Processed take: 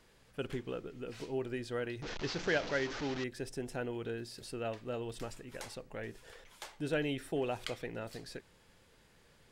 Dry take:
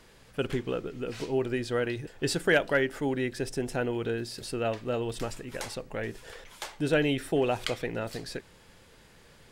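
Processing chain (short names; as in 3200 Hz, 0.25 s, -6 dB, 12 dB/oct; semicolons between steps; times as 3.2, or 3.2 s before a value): 2.02–3.24 delta modulation 32 kbps, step -26.5 dBFS; gain -8.5 dB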